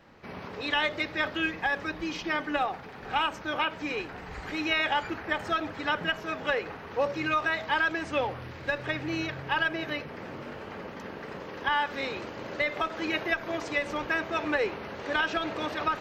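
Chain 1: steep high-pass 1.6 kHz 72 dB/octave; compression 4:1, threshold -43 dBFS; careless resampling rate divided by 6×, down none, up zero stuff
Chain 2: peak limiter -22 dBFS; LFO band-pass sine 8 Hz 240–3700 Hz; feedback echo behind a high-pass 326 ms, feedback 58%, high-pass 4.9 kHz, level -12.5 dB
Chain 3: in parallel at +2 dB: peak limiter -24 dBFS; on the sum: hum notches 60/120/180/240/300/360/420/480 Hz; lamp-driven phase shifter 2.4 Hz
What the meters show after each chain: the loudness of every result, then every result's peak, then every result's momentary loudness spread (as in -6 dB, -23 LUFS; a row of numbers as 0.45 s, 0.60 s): -35.5 LUFS, -41.0 LUFS, -29.0 LUFS; -14.5 dBFS, -24.0 dBFS, -12.0 dBFS; 6 LU, 10 LU, 10 LU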